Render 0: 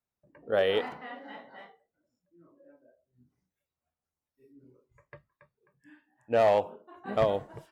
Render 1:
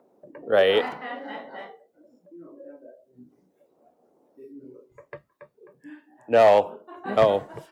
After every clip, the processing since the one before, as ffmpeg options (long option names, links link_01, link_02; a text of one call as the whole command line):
ffmpeg -i in.wav -filter_complex "[0:a]lowshelf=frequency=120:gain=-10.5,acrossover=split=270|590[link_01][link_02][link_03];[link_02]acompressor=mode=upward:threshold=-42dB:ratio=2.5[link_04];[link_01][link_04][link_03]amix=inputs=3:normalize=0,volume=7.5dB" out.wav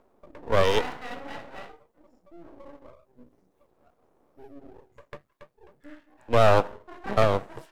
ffmpeg -i in.wav -af "aeval=exprs='max(val(0),0)':channel_layout=same,volume=1.5dB" out.wav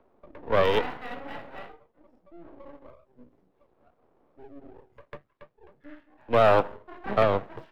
ffmpeg -i in.wav -filter_complex "[0:a]acrossover=split=160|910|4200[link_01][link_02][link_03][link_04];[link_01]alimiter=level_in=1.5dB:limit=-24dB:level=0:latency=1,volume=-1.5dB[link_05];[link_04]acrusher=samples=40:mix=1:aa=0.000001:lfo=1:lforange=40:lforate=0.57[link_06];[link_05][link_02][link_03][link_06]amix=inputs=4:normalize=0" out.wav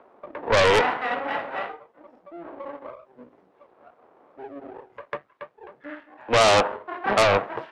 ffmpeg -i in.wav -filter_complex "[0:a]bandpass=frequency=1200:width_type=q:width=0.56:csg=0,asplit=2[link_01][link_02];[link_02]aeval=exprs='0.299*sin(PI/2*5.62*val(0)/0.299)':channel_layout=same,volume=-9.5dB[link_03];[link_01][link_03]amix=inputs=2:normalize=0,volume=2dB" out.wav